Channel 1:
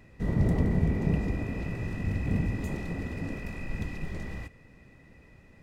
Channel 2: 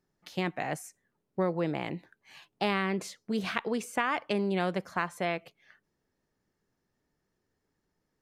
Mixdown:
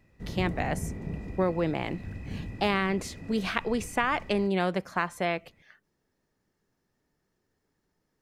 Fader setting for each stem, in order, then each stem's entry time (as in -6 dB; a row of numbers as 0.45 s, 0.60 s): -9.0 dB, +2.5 dB; 0.00 s, 0.00 s